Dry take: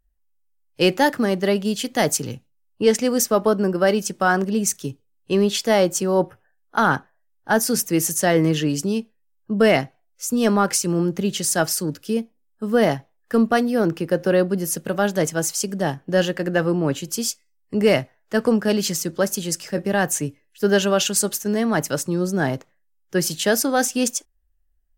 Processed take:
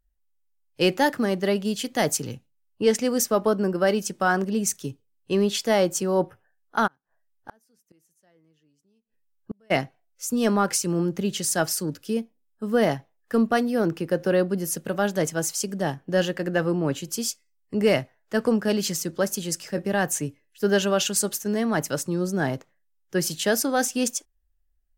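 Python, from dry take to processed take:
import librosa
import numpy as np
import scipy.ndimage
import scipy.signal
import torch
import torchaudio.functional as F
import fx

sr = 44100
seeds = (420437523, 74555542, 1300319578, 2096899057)

y = fx.gate_flip(x, sr, shuts_db=-17.0, range_db=-41, at=(6.86, 9.7), fade=0.02)
y = y * librosa.db_to_amplitude(-3.5)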